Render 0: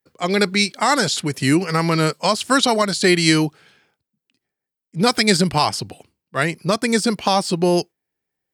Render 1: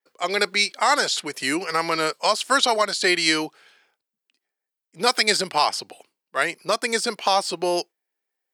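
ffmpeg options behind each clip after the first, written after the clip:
-af "highpass=490,adynamicequalizer=threshold=0.02:dfrequency=6800:dqfactor=0.7:tfrequency=6800:tqfactor=0.7:attack=5:release=100:ratio=0.375:range=2.5:mode=cutabove:tftype=highshelf,volume=-1dB"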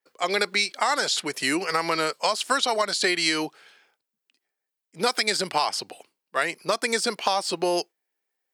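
-af "acompressor=threshold=-20dB:ratio=6,volume=1dB"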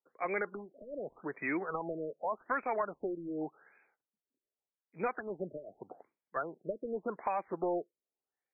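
-af "asoftclip=type=tanh:threshold=-15.5dB,afftfilt=real='re*lt(b*sr/1024,620*pow(2600/620,0.5+0.5*sin(2*PI*0.85*pts/sr)))':imag='im*lt(b*sr/1024,620*pow(2600/620,0.5+0.5*sin(2*PI*0.85*pts/sr)))':win_size=1024:overlap=0.75,volume=-7.5dB"

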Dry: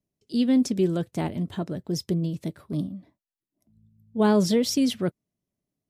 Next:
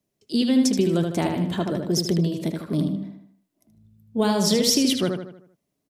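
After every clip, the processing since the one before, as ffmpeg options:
-filter_complex "[0:a]lowshelf=f=160:g=-9.5,acrossover=split=130|3000[a][b][c];[b]acompressor=threshold=-29dB:ratio=4[d];[a][d][c]amix=inputs=3:normalize=0,asplit=2[e][f];[f]adelay=77,lowpass=f=4.6k:p=1,volume=-4.5dB,asplit=2[g][h];[h]adelay=77,lowpass=f=4.6k:p=1,volume=0.46,asplit=2[i][j];[j]adelay=77,lowpass=f=4.6k:p=1,volume=0.46,asplit=2[k][l];[l]adelay=77,lowpass=f=4.6k:p=1,volume=0.46,asplit=2[m][n];[n]adelay=77,lowpass=f=4.6k:p=1,volume=0.46,asplit=2[o][p];[p]adelay=77,lowpass=f=4.6k:p=1,volume=0.46[q];[g][i][k][m][o][q]amix=inputs=6:normalize=0[r];[e][r]amix=inputs=2:normalize=0,volume=8.5dB"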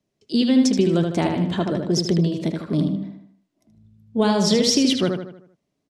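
-af "lowpass=6.3k,volume=2.5dB"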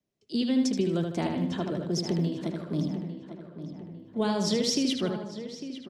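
-filter_complex "[0:a]acrossover=split=110|720|2400[a][b][c][d];[a]acrusher=bits=5:mode=log:mix=0:aa=0.000001[e];[e][b][c][d]amix=inputs=4:normalize=0,asplit=2[f][g];[g]adelay=851,lowpass=f=2.8k:p=1,volume=-11dB,asplit=2[h][i];[i]adelay=851,lowpass=f=2.8k:p=1,volume=0.49,asplit=2[j][k];[k]adelay=851,lowpass=f=2.8k:p=1,volume=0.49,asplit=2[l][m];[m]adelay=851,lowpass=f=2.8k:p=1,volume=0.49,asplit=2[n][o];[o]adelay=851,lowpass=f=2.8k:p=1,volume=0.49[p];[f][h][j][l][n][p]amix=inputs=6:normalize=0,volume=-8.5dB"

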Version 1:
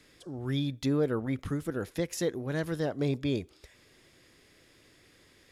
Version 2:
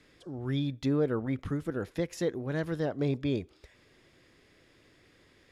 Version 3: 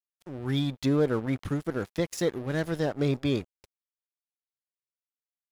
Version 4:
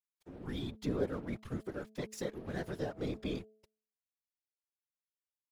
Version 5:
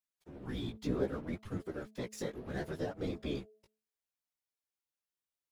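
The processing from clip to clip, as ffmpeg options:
-af "lowpass=f=3.3k:p=1"
-af "highshelf=f=4.5k:g=8.5,aeval=exprs='sgn(val(0))*max(abs(val(0))-0.00531,0)':c=same,volume=4dB"
-af "afftfilt=real='hypot(re,im)*cos(2*PI*random(0))':imag='hypot(re,im)*sin(2*PI*random(1))':win_size=512:overlap=0.75,bandreject=f=216.3:t=h:w=4,bandreject=f=432.6:t=h:w=4,bandreject=f=648.9:t=h:w=4,volume=-4.5dB"
-af "flanger=delay=9.9:depth=8.7:regen=3:speed=0.67:shape=triangular,volume=3dB"

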